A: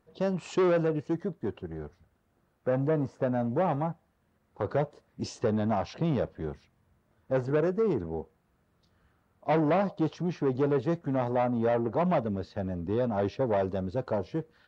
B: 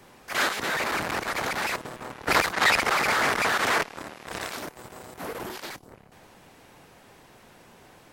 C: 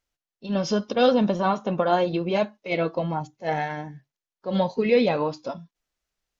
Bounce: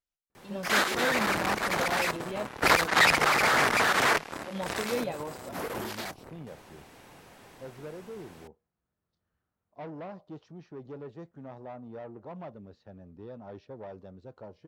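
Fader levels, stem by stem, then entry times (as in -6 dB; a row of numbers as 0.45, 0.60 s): -16.0, 0.0, -13.0 dB; 0.30, 0.35, 0.00 s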